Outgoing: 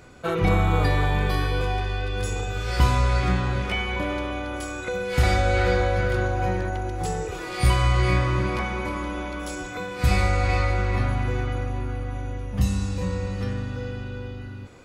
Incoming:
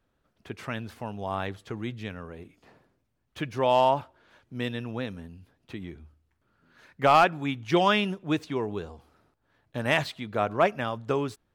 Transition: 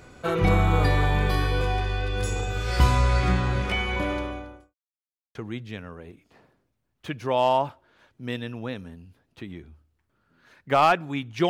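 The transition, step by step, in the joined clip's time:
outgoing
0:04.05–0:04.75: fade out and dull
0:04.75–0:05.35: silence
0:05.35: continue with incoming from 0:01.67

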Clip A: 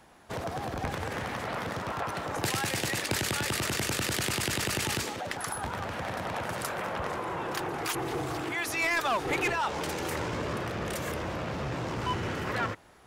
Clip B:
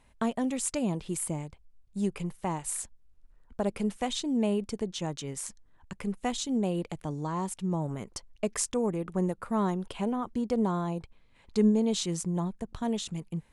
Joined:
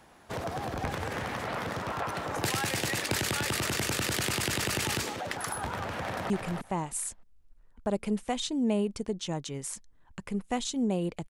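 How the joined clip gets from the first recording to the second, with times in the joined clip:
clip A
0:06.01–0:06.30: delay throw 310 ms, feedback 15%, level −5 dB
0:06.30: continue with clip B from 0:02.03

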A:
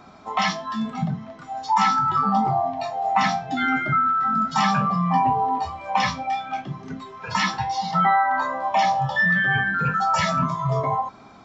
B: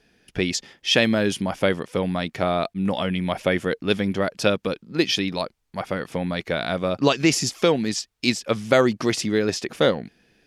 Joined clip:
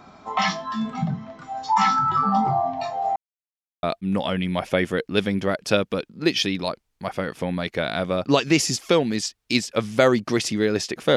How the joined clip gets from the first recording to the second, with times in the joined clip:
A
0:03.16–0:03.83: silence
0:03.83: continue with B from 0:02.56

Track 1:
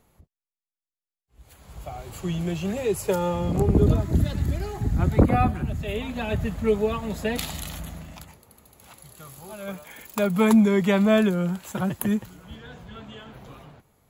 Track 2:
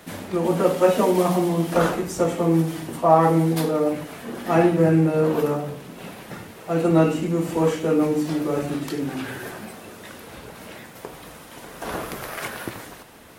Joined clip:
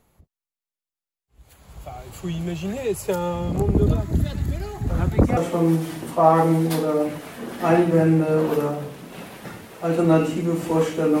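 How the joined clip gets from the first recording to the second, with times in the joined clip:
track 1
0:04.87: mix in track 2 from 0:01.73 0.50 s −16 dB
0:05.37: continue with track 2 from 0:02.23

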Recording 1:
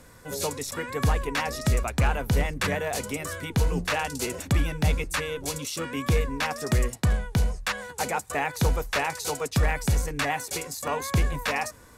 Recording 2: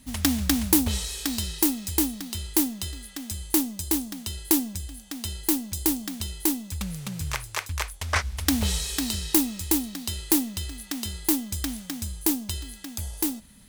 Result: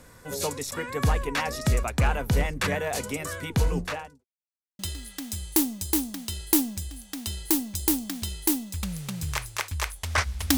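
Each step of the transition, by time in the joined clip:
recording 1
0:03.70–0:04.25: fade out and dull
0:04.25–0:04.79: silence
0:04.79: continue with recording 2 from 0:02.77

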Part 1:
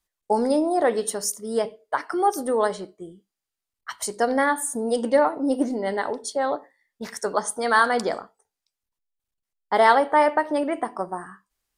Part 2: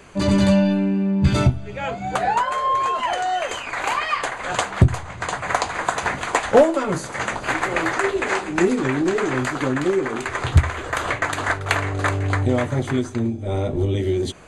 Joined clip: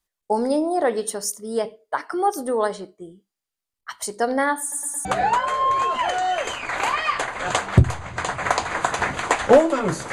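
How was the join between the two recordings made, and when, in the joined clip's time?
part 1
0:04.61: stutter in place 0.11 s, 4 plays
0:05.05: continue with part 2 from 0:02.09

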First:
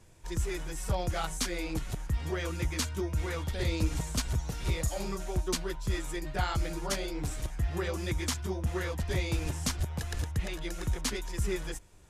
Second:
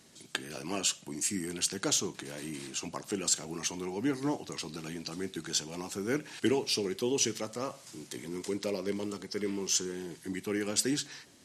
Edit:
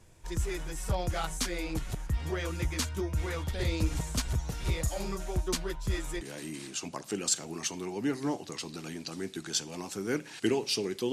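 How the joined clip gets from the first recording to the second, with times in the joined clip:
first
0:06.21: continue with second from 0:02.21

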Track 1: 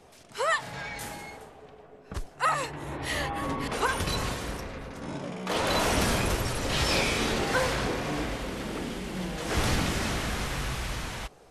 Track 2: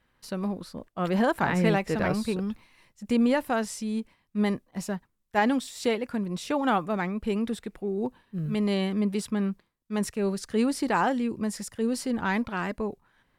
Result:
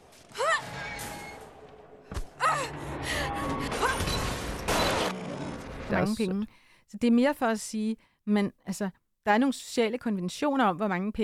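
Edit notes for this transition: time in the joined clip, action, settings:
track 1
0:04.68–0:05.90: reverse
0:05.90: continue with track 2 from 0:01.98

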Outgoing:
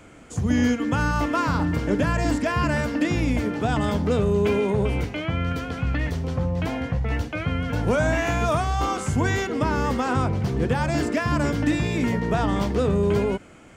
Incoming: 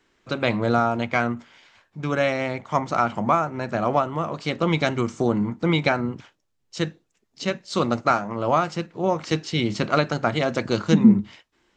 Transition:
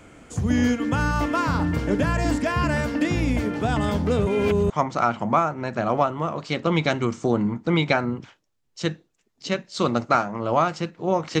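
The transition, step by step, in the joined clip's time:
outgoing
0:04.27–0:04.70: reverse
0:04.70: continue with incoming from 0:02.66

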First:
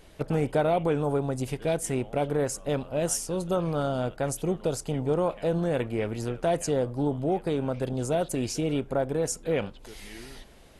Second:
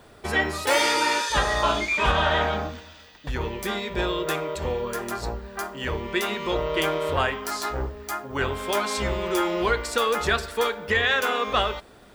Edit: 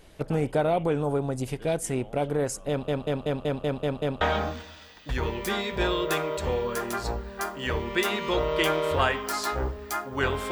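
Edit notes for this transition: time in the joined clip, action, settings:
first
0:02.69: stutter in place 0.19 s, 8 plays
0:04.21: continue with second from 0:02.39

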